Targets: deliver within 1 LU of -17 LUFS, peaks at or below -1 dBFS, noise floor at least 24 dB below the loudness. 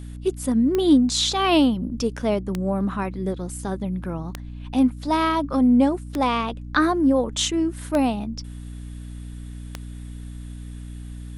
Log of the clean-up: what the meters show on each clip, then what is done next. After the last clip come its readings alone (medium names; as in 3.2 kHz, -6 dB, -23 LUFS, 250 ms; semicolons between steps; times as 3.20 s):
clicks found 6; hum 60 Hz; highest harmonic 300 Hz; hum level -33 dBFS; loudness -22.0 LUFS; peak level -6.5 dBFS; loudness target -17.0 LUFS
-> de-click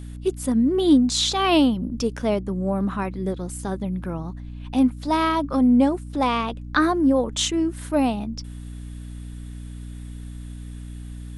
clicks found 0; hum 60 Hz; highest harmonic 180 Hz; hum level -33 dBFS
-> de-hum 60 Hz, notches 3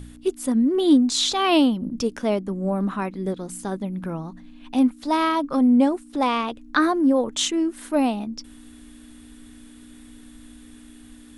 hum not found; loudness -22.0 LUFS; peak level -6.5 dBFS; loudness target -17.0 LUFS
-> trim +5 dB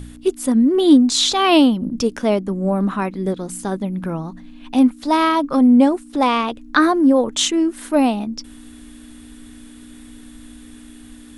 loudness -17.0 LUFS; peak level -1.5 dBFS; noise floor -41 dBFS